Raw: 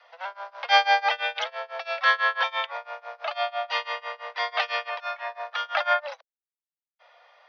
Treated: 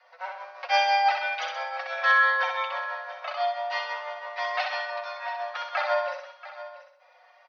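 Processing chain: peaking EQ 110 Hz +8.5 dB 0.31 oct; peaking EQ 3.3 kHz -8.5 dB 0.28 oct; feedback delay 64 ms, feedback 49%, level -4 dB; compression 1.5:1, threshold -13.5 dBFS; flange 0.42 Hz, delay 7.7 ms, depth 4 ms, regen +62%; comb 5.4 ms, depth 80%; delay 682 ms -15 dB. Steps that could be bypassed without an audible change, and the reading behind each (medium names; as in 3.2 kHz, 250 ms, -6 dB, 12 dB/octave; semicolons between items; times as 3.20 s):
peaking EQ 110 Hz: input has nothing below 430 Hz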